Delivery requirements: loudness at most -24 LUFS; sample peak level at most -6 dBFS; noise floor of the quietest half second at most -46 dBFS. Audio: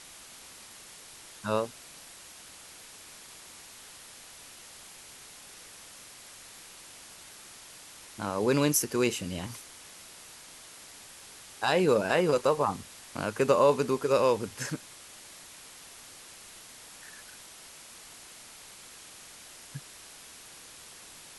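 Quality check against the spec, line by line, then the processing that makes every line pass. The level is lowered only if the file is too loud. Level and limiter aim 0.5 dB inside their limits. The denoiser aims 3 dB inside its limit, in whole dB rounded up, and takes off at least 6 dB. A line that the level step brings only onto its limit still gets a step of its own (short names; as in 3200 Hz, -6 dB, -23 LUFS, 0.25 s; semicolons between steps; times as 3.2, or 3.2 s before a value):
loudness -28.0 LUFS: OK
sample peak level -11.0 dBFS: OK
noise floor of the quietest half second -49 dBFS: OK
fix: none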